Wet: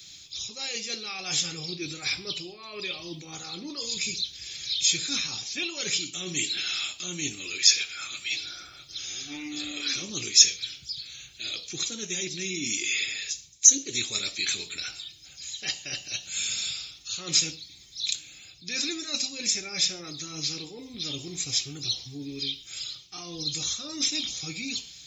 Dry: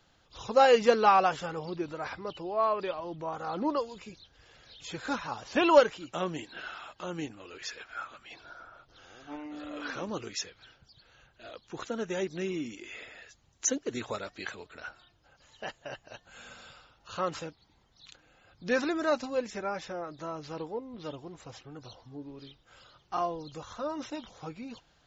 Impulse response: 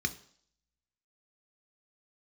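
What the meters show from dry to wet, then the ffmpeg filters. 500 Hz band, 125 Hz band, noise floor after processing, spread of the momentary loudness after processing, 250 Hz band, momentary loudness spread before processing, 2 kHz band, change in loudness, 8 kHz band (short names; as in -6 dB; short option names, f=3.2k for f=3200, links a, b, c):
-14.0 dB, +3.0 dB, -49 dBFS, 15 LU, -2.5 dB, 24 LU, +4.0 dB, +4.0 dB, n/a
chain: -filter_complex "[0:a]areverse,acompressor=threshold=-39dB:ratio=6,areverse,aexciter=amount=10.5:drive=8:freq=2.4k[a];[1:a]atrim=start_sample=2205,afade=t=out:st=0.2:d=0.01,atrim=end_sample=9261[b];[a][b]afir=irnorm=-1:irlink=0,volume=-4dB"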